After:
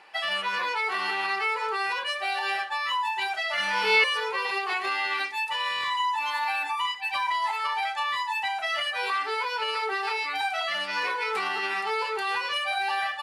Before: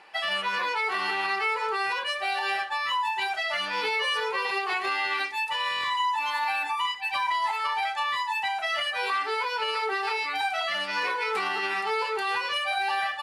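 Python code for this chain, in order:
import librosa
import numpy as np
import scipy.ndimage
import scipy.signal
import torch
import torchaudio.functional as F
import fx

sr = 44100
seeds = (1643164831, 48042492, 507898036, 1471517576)

y = fx.low_shelf(x, sr, hz=420.0, db=-3.0)
y = fx.room_flutter(y, sr, wall_m=4.3, rt60_s=0.7, at=(3.55, 4.04))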